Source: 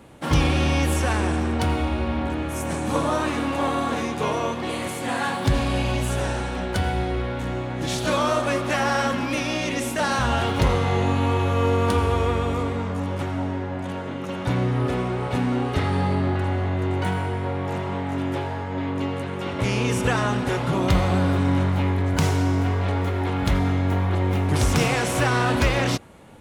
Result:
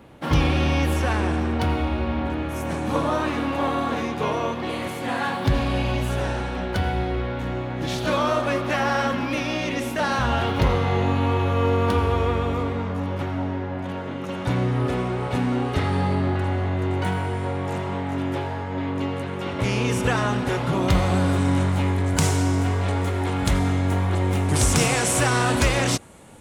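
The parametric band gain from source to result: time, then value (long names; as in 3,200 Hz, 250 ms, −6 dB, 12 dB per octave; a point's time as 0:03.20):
parametric band 8,400 Hz 1 octave
0:13.85 −9 dB
0:14.37 0 dB
0:17.21 0 dB
0:17.44 +8.5 dB
0:18.15 −1 dB
0:20.77 −1 dB
0:21.39 +10.5 dB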